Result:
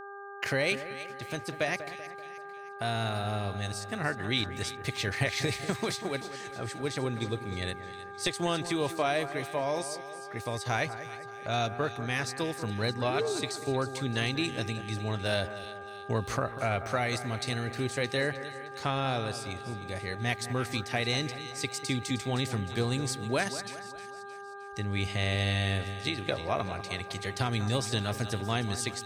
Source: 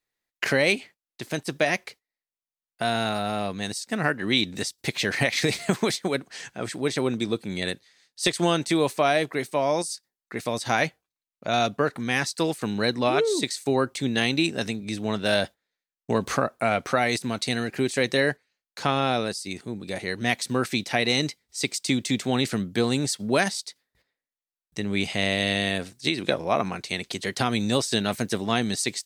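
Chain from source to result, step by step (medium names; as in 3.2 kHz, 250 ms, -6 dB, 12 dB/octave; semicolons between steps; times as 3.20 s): resonant low shelf 130 Hz +10.5 dB, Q 1.5; two-band feedback delay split 2.1 kHz, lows 192 ms, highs 310 ms, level -12 dB; mains buzz 400 Hz, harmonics 4, -37 dBFS -1 dB/octave; trim -7 dB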